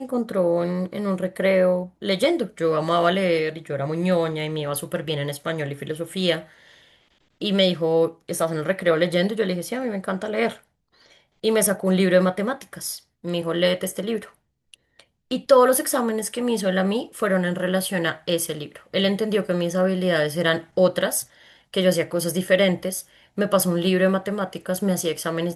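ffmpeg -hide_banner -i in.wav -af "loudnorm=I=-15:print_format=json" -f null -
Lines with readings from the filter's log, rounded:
"input_i" : "-22.8",
"input_tp" : "-4.1",
"input_lra" : "2.5",
"input_thresh" : "-33.2",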